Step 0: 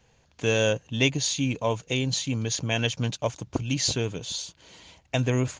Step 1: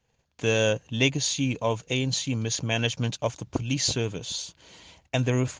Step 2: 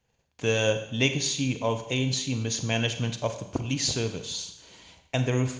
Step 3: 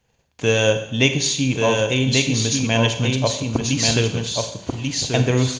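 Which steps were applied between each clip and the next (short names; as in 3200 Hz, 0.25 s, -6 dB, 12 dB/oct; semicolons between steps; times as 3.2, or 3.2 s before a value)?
gate -60 dBFS, range -12 dB
Schroeder reverb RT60 0.76 s, combs from 31 ms, DRR 8 dB; gain -1.5 dB
echo 1.137 s -3.5 dB; gain +7 dB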